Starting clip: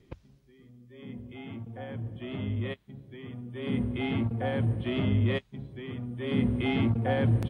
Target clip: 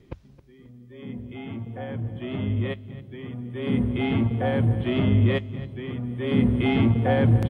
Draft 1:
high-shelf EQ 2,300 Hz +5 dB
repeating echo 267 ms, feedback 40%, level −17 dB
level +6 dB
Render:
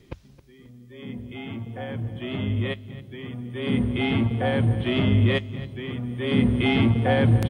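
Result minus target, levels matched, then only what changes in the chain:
4,000 Hz band +5.5 dB
change: high-shelf EQ 2,300 Hz −4 dB

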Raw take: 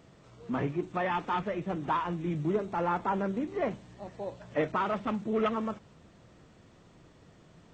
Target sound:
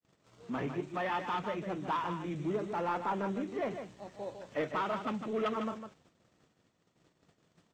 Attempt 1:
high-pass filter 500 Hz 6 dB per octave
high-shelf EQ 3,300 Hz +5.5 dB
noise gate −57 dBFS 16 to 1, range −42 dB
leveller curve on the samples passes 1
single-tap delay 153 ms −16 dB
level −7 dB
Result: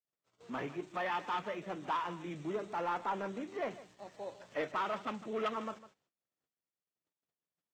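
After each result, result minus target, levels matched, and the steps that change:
echo-to-direct −8 dB; 125 Hz band −5.0 dB
change: single-tap delay 153 ms −8 dB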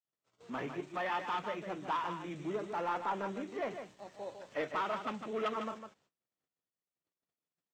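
125 Hz band −5.5 dB
change: high-pass filter 140 Hz 6 dB per octave

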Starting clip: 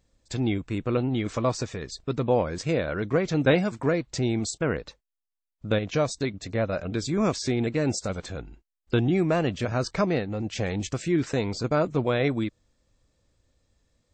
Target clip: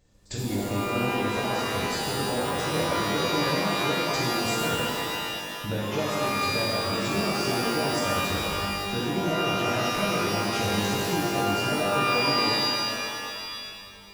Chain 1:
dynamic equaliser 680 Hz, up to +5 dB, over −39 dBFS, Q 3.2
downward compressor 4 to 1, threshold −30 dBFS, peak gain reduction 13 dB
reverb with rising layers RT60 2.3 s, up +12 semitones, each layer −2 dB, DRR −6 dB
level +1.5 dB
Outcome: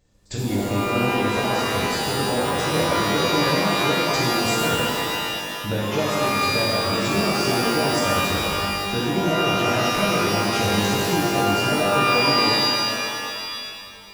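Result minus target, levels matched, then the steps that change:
downward compressor: peak gain reduction −5 dB
change: downward compressor 4 to 1, threshold −37 dBFS, peak gain reduction 18.5 dB

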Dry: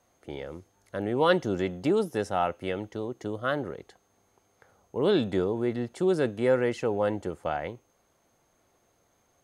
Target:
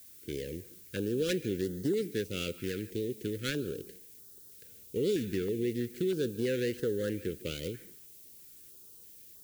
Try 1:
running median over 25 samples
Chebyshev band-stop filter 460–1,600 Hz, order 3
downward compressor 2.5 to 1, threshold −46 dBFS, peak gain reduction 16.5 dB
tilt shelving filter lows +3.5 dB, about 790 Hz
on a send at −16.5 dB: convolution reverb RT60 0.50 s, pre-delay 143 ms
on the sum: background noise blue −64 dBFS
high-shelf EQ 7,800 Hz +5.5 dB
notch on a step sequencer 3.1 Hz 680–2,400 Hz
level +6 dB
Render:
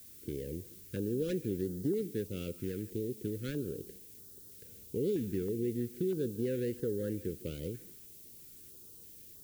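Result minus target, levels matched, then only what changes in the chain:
1,000 Hz band −7.0 dB; downward compressor: peak gain reduction +7 dB
change: downward compressor 2.5 to 1, threshold −34.5 dBFS, peak gain reduction 9.5 dB
change: tilt shelving filter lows −3.5 dB, about 790 Hz

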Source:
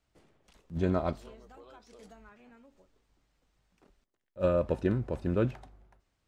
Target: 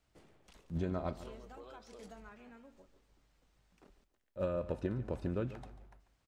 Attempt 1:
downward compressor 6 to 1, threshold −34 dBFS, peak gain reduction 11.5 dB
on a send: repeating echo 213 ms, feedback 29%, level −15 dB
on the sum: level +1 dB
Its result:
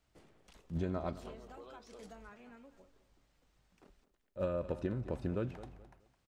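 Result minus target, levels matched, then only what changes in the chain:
echo 71 ms late
change: repeating echo 142 ms, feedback 29%, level −15 dB

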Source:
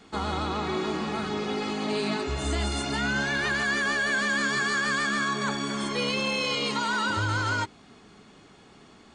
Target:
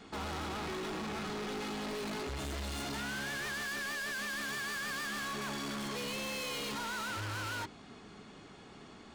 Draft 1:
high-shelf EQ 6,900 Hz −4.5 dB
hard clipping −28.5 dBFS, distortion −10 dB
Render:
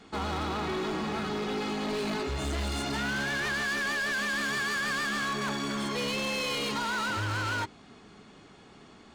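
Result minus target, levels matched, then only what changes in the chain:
hard clipping: distortion −5 dB
change: hard clipping −37.5 dBFS, distortion −5 dB

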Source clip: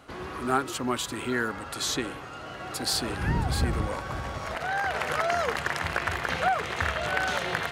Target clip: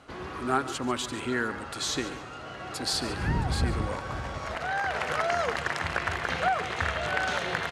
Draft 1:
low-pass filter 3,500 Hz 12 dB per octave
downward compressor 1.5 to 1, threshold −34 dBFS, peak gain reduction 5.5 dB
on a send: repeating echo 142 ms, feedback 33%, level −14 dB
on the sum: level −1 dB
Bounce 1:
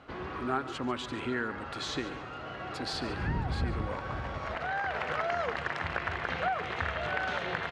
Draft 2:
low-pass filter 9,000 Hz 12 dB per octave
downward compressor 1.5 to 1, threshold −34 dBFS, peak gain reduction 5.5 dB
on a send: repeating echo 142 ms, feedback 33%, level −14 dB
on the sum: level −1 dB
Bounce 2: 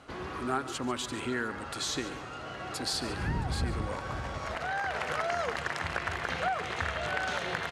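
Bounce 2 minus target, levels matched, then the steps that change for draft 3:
downward compressor: peak gain reduction +5.5 dB
remove: downward compressor 1.5 to 1, threshold −34 dBFS, peak gain reduction 5.5 dB

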